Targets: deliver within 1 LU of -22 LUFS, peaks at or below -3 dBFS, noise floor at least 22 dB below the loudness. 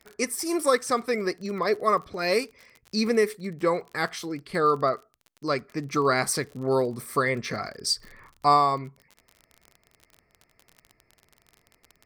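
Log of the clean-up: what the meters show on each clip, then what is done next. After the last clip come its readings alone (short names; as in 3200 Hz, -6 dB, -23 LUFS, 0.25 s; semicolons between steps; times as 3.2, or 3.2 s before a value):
ticks 38/s; loudness -26.0 LUFS; peak -7.5 dBFS; loudness target -22.0 LUFS
-> de-click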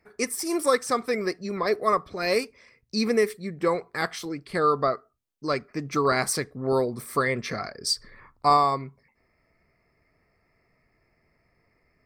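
ticks 0.17/s; loudness -26.0 LUFS; peak -7.5 dBFS; loudness target -22.0 LUFS
-> gain +4 dB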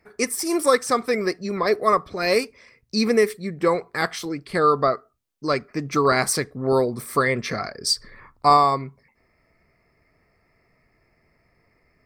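loudness -22.0 LUFS; peak -3.5 dBFS; noise floor -66 dBFS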